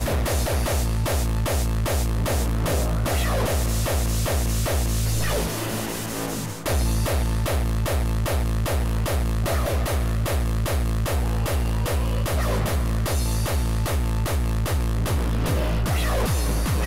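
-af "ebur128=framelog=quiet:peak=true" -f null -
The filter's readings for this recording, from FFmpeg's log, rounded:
Integrated loudness:
  I:         -24.2 LUFS
  Threshold: -34.2 LUFS
Loudness range:
  LRA:         1.3 LU
  Threshold: -44.3 LUFS
  LRA low:   -24.9 LUFS
  LRA high:  -23.6 LUFS
True peak:
  Peak:      -15.0 dBFS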